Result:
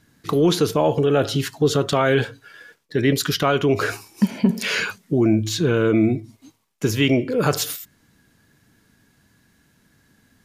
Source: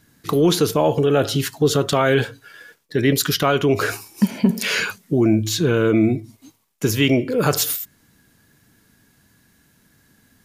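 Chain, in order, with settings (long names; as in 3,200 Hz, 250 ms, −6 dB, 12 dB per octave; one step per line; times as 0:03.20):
high-shelf EQ 10,000 Hz −9.5 dB
level −1 dB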